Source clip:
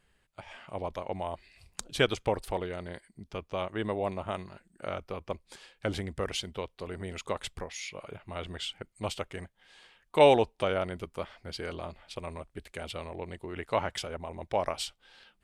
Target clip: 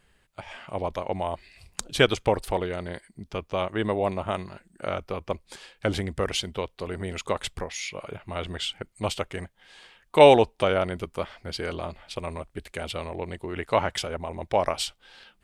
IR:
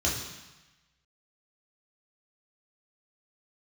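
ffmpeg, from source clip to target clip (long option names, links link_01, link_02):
-af "volume=6dB"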